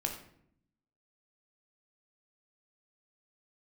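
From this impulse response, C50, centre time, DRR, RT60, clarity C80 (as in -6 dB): 7.0 dB, 21 ms, 2.5 dB, 0.70 s, 10.0 dB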